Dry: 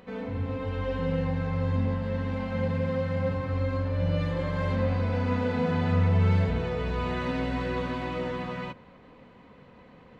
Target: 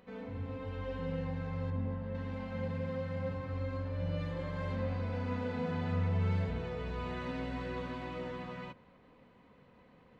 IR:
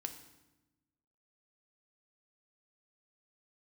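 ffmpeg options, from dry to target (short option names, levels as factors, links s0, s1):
-filter_complex "[0:a]asettb=1/sr,asplit=3[s0][s1][s2];[s0]atrim=end=1.704[s3];[s1]atrim=start=1.7:end=2.15,asetpts=PTS-STARTPTS,afade=t=in:d=0.004:c=qsin,afade=t=out:st=0.446:d=0.004:c=qsin,lowpass=f=1600:p=1[s4];[s2]atrim=start=2.146[s5];[s3][s4]acrossfade=d=0.004:c1=hsin:c2=qsin[s6];[s6][s5]acrossfade=d=0.004:c1=qsin:c2=hsin,volume=0.355"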